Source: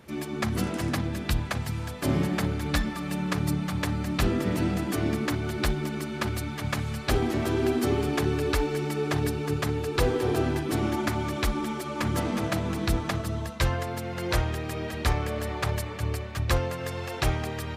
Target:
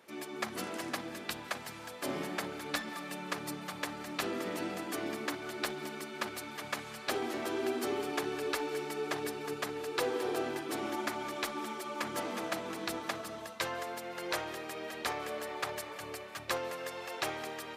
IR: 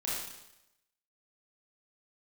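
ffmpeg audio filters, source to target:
-filter_complex "[0:a]highpass=380,asplit=2[a][b];[1:a]atrim=start_sample=2205,adelay=138[c];[b][c]afir=irnorm=-1:irlink=0,volume=-21dB[d];[a][d]amix=inputs=2:normalize=0,volume=-5dB"

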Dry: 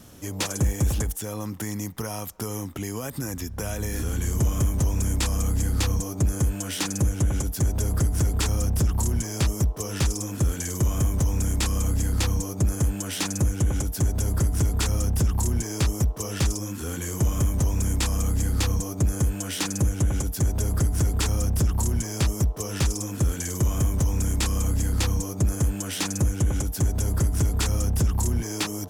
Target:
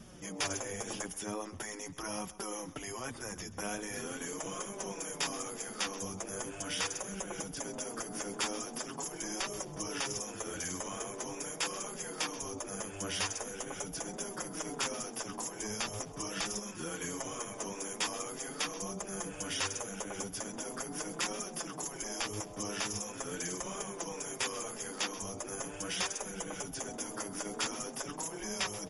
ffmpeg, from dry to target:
-filter_complex "[0:a]asplit=3[a][b][c];[a]afade=t=out:st=9.17:d=0.02[d];[b]bandreject=f=74.71:t=h:w=4,bandreject=f=149.42:t=h:w=4,bandreject=f=224.13:t=h:w=4,bandreject=f=298.84:t=h:w=4,bandreject=f=373.55:t=h:w=4,bandreject=f=448.26:t=h:w=4,bandreject=f=522.97:t=h:w=4,bandreject=f=597.68:t=h:w=4,bandreject=f=672.39:t=h:w=4,afade=t=in:st=9.17:d=0.02,afade=t=out:st=11.36:d=0.02[e];[c]afade=t=in:st=11.36:d=0.02[f];[d][e][f]amix=inputs=3:normalize=0,afftfilt=real='re*lt(hypot(re,im),0.126)':imag='im*lt(hypot(re,im),0.126)':win_size=1024:overlap=0.75,equalizer=f=8.2k:t=o:w=0.2:g=-13,bandreject=f=4.1k:w=5.6,flanger=delay=4.9:depth=5.3:regen=-3:speed=0.42:shape=triangular,aecho=1:1:131|262|393:0.126|0.0403|0.0129" -ar 48000 -c:a libmp3lame -b:a 48k

